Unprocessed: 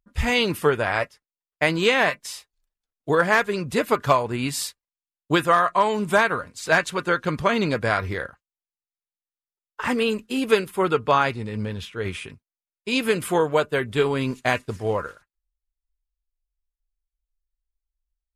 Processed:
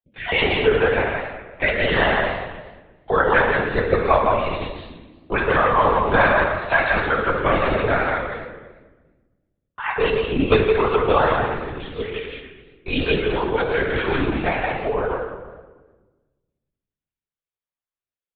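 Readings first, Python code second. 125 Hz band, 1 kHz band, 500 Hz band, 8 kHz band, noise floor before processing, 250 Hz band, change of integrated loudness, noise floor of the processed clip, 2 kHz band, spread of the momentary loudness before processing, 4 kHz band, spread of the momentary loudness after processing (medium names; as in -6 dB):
+2.0 dB, +3.0 dB, +3.5 dB, under -40 dB, under -85 dBFS, +0.5 dB, +2.5 dB, under -85 dBFS, +3.5 dB, 12 LU, 0.0 dB, 13 LU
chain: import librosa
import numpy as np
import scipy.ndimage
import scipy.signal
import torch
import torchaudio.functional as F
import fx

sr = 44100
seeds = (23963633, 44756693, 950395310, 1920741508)

p1 = fx.spec_dropout(x, sr, seeds[0], share_pct=21)
p2 = scipy.signal.sosfilt(scipy.signal.butter(2, 260.0, 'highpass', fs=sr, output='sos'), p1)
p3 = fx.air_absorb(p2, sr, metres=110.0)
p4 = p3 + fx.echo_single(p3, sr, ms=167, db=-4.0, dry=0)
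p5 = fx.room_shoebox(p4, sr, seeds[1], volume_m3=790.0, walls='mixed', distance_m=1.6)
p6 = fx.lpc_vocoder(p5, sr, seeds[2], excitation='whisper', order=16)
y = fx.echo_warbled(p6, sr, ms=116, feedback_pct=47, rate_hz=2.8, cents=207, wet_db=-13.0)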